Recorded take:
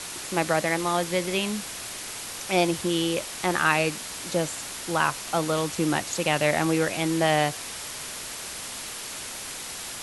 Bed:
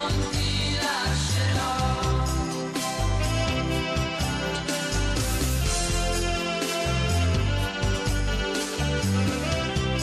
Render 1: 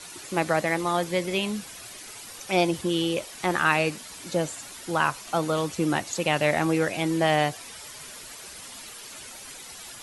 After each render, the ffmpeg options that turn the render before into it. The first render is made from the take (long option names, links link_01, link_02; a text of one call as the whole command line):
ffmpeg -i in.wav -af "afftdn=noise_reduction=10:noise_floor=-37" out.wav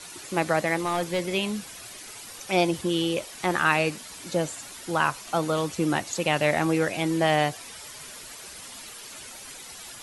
ffmpeg -i in.wav -filter_complex "[0:a]asettb=1/sr,asplit=3[link_01][link_02][link_03];[link_01]atrim=end=0.784[link_04];[link_02]atrim=start=0.78:end=1.21,asetpts=PTS-STARTPTS,afade=type=in:duration=0.004:curve=qsin,afade=type=out:start_time=0.426:duration=0.004:curve=qsin,volume=20.5dB,asoftclip=hard,volume=-20.5dB[link_05];[link_03]atrim=start=1.206[link_06];[link_04][link_05]acrossfade=duration=0.004:curve1=hsin:curve2=qsin[link_07];[link_07][link_06]acrossfade=duration=0.004:curve1=qsin:curve2=hsin" out.wav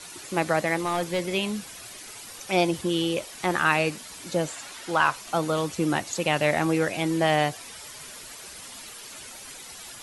ffmpeg -i in.wav -filter_complex "[0:a]asettb=1/sr,asplit=3[link_01][link_02][link_03];[link_01]atrim=end=4.484[link_04];[link_02]atrim=start=4.48:end=5.16,asetpts=PTS-STARTPTS,afade=type=in:duration=0.004:curve=qsin,afade=type=out:start_time=0.676:duration=0.004:curve=qsin,asplit=2[link_05][link_06];[link_06]highpass=frequency=720:poles=1,volume=9dB,asoftclip=type=tanh:threshold=-7dB[link_07];[link_05][link_07]amix=inputs=2:normalize=0,lowpass=frequency=3700:poles=1,volume=-6dB[link_08];[link_03]atrim=start=5.156[link_09];[link_04][link_08]acrossfade=duration=0.004:curve1=hsin:curve2=qsin[link_10];[link_10][link_09]acrossfade=duration=0.004:curve1=qsin:curve2=hsin" out.wav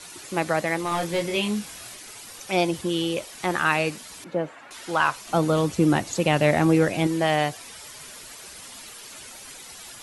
ffmpeg -i in.wav -filter_complex "[0:a]asettb=1/sr,asplit=3[link_01][link_02][link_03];[link_01]atrim=end=0.894[link_04];[link_02]atrim=start=0.89:end=1.95,asetpts=PTS-STARTPTS,afade=type=in:duration=0.004:curve=qsin,afade=type=out:start_time=1.056:duration=0.004:curve=qsin,asplit=2[link_05][link_06];[link_06]adelay=24,volume=-3dB[link_07];[link_05][link_07]amix=inputs=2:normalize=0,atrim=end_sample=46746[link_08];[link_03]atrim=start=1.946[link_09];[link_04][link_08]acrossfade=duration=0.004:curve1=hsin:curve2=qsin[link_10];[link_10][link_09]acrossfade=duration=0.004:curve1=qsin:curve2=hsin,asettb=1/sr,asplit=3[link_11][link_12][link_13];[link_11]atrim=end=4.244[link_14];[link_12]atrim=start=4.24:end=4.71,asetpts=PTS-STARTPTS,afade=type=in:duration=0.004:curve=qsin,afade=type=out:start_time=0.466:duration=0.004:curve=qsin,acrossover=split=150 2400:gain=0.224 1 0.0631[link_15][link_16][link_17];[link_15][link_16][link_17]amix=inputs=3:normalize=0[link_18];[link_13]atrim=start=4.706[link_19];[link_14][link_18]acrossfade=duration=0.004:curve1=hsin:curve2=qsin[link_20];[link_20][link_19]acrossfade=duration=0.004:curve1=qsin:curve2=hsin,asettb=1/sr,asplit=3[link_21][link_22][link_23];[link_21]atrim=end=5.294[link_24];[link_22]atrim=start=5.29:end=7.07,asetpts=PTS-STARTPTS,afade=type=in:duration=0.004:curve=qsin,afade=type=out:start_time=1.776:duration=0.004:curve=qsin,lowshelf=frequency=490:gain=8[link_25];[link_23]atrim=start=7.066[link_26];[link_24][link_25]acrossfade=duration=0.004:curve1=hsin:curve2=qsin[link_27];[link_27][link_26]acrossfade=duration=0.004:curve1=qsin:curve2=hsin" out.wav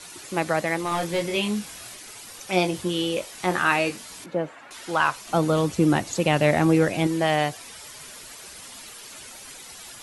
ffmpeg -i in.wav -filter_complex "[0:a]asettb=1/sr,asplit=3[link_01][link_02][link_03];[link_01]atrim=end=2.504[link_04];[link_02]atrim=start=2.5:end=4.26,asetpts=PTS-STARTPTS,afade=type=in:duration=0.004:curve=qsin,afade=type=out:start_time=1.756:duration=0.004:curve=qsin,asplit=2[link_05][link_06];[link_06]adelay=22,volume=-7.5dB[link_07];[link_05][link_07]amix=inputs=2:normalize=0,atrim=end_sample=77616[link_08];[link_03]atrim=start=4.256[link_09];[link_04][link_08]acrossfade=duration=0.004:curve1=hsin:curve2=qsin[link_10];[link_10][link_09]acrossfade=duration=0.004:curve1=qsin:curve2=hsin" out.wav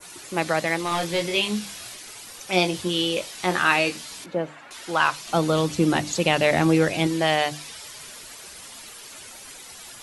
ffmpeg -i in.wav -af "adynamicequalizer=threshold=0.00891:dfrequency=4000:dqfactor=0.83:tfrequency=4000:tqfactor=0.83:attack=5:release=100:ratio=0.375:range=3:mode=boostabove:tftype=bell,bandreject=frequency=50:width_type=h:width=6,bandreject=frequency=100:width_type=h:width=6,bandreject=frequency=150:width_type=h:width=6,bandreject=frequency=200:width_type=h:width=6,bandreject=frequency=250:width_type=h:width=6,bandreject=frequency=300:width_type=h:width=6" out.wav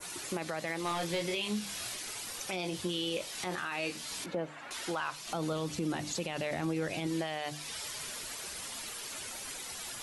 ffmpeg -i in.wav -af "acompressor=threshold=-35dB:ratio=2,alimiter=level_in=0.5dB:limit=-24dB:level=0:latency=1:release=28,volume=-0.5dB" out.wav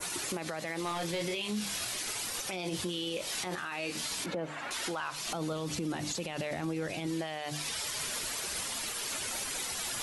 ffmpeg -i in.wav -af "acontrast=84,alimiter=level_in=2dB:limit=-24dB:level=0:latency=1:release=90,volume=-2dB" out.wav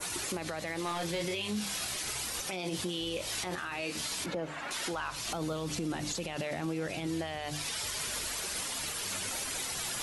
ffmpeg -i in.wav -i bed.wav -filter_complex "[1:a]volume=-28dB[link_01];[0:a][link_01]amix=inputs=2:normalize=0" out.wav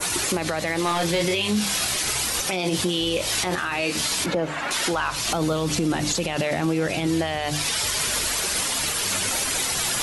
ffmpeg -i in.wav -af "volume=11.5dB" out.wav